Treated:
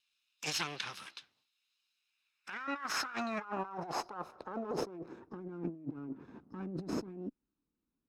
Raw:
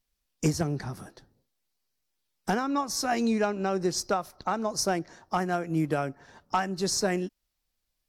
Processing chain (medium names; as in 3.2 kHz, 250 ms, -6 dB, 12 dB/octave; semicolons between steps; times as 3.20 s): comb filter that takes the minimum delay 0.77 ms; band-pass sweep 3.1 kHz -> 280 Hz, 1.93–5.58 s; compressor with a negative ratio -47 dBFS, ratio -1; trim +6 dB